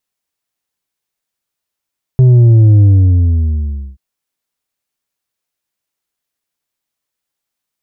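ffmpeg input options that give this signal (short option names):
-f lavfi -i "aevalsrc='0.631*clip((1.78-t)/1.15,0,1)*tanh(1.78*sin(2*PI*130*1.78/log(65/130)*(exp(log(65/130)*t/1.78)-1)))/tanh(1.78)':d=1.78:s=44100"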